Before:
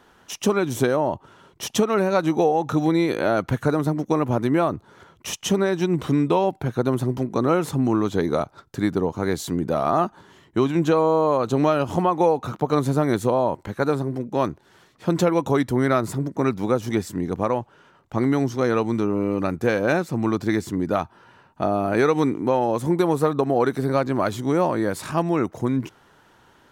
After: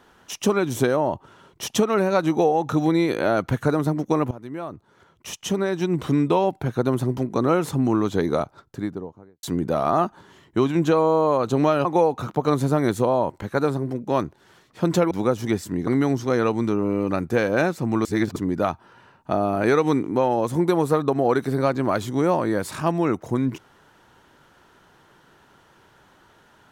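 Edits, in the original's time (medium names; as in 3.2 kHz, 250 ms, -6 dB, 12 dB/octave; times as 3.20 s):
4.31–6.18 s: fade in, from -19 dB
8.31–9.43 s: studio fade out
11.85–12.10 s: delete
15.36–16.55 s: delete
17.31–18.18 s: delete
20.36–20.67 s: reverse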